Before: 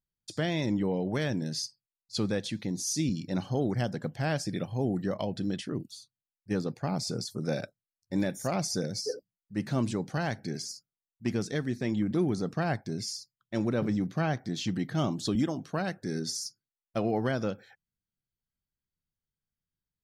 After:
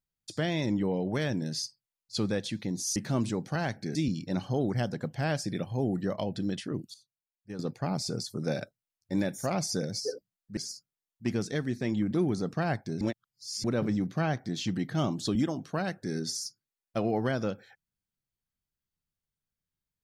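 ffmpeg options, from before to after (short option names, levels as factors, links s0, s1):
-filter_complex "[0:a]asplit=8[s0][s1][s2][s3][s4][s5][s6][s7];[s0]atrim=end=2.962[s8];[s1]atrim=start=9.578:end=10.572[s9];[s2]atrim=start=2.958:end=5.952[s10];[s3]atrim=start=5.948:end=6.602,asetpts=PTS-STARTPTS,volume=0.299[s11];[s4]atrim=start=6.598:end=9.582[s12];[s5]atrim=start=10.568:end=13.012[s13];[s6]atrim=start=13.008:end=13.642,asetpts=PTS-STARTPTS,areverse[s14];[s7]atrim=start=13.638[s15];[s8][s9]acrossfade=d=0.004:c1=hsin:c2=hsin[s16];[s16][s10]acrossfade=d=0.004:c1=hsin:c2=hsin[s17];[s17][s11]acrossfade=d=0.004:c1=hsin:c2=hsin[s18];[s18][s12]acrossfade=d=0.004:c1=hsin:c2=hsin[s19];[s19][s13]acrossfade=d=0.004:c1=hsin:c2=hsin[s20];[s20][s14]acrossfade=d=0.004:c1=hsin:c2=hsin[s21];[s21][s15]acrossfade=d=0.004:c1=hsin:c2=hsin"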